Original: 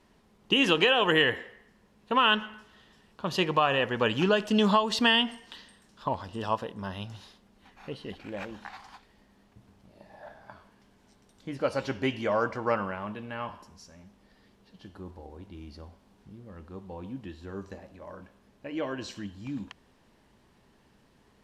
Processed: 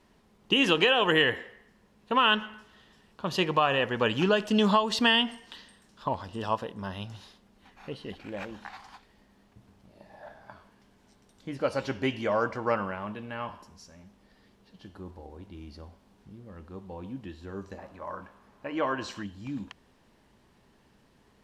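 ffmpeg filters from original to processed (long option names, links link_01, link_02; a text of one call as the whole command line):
ffmpeg -i in.wav -filter_complex "[0:a]asettb=1/sr,asplit=3[link_01][link_02][link_03];[link_01]atrim=end=17.784[link_04];[link_02]atrim=start=17.78:end=19.23,asetpts=PTS-STARTPTS,afade=type=in:duration=0.004:curve=qsin,afade=type=out:start_time=1.446:duration=0.004:curve=qsin,equalizer=frequency=1100:width=1.1:gain=11[link_05];[link_03]atrim=start=19.226[link_06];[link_04][link_05]acrossfade=duration=0.004:curve1=hsin:curve2=qsin[link_07];[link_07][link_06]acrossfade=duration=0.004:curve1=qsin:curve2=hsin" out.wav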